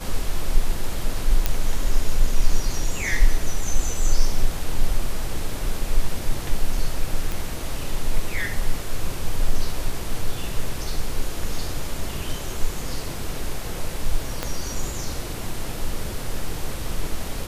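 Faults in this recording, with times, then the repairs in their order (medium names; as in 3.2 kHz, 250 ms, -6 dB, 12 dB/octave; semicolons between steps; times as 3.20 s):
1.46 s: pop -5 dBFS
7.32 s: pop
14.43 s: pop -10 dBFS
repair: de-click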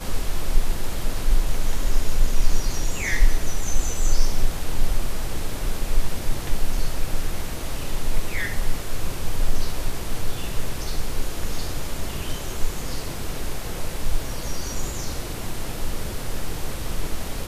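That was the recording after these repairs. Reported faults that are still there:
14.43 s: pop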